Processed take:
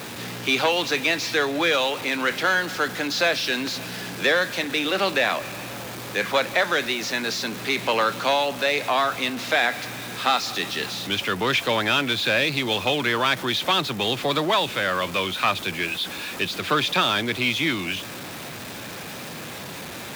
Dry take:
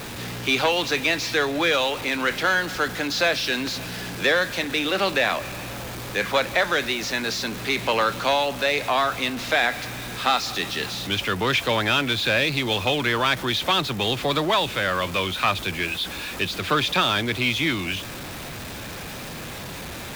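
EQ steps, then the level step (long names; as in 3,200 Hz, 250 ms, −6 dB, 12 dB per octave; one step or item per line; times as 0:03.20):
high-pass filter 130 Hz 12 dB per octave
0.0 dB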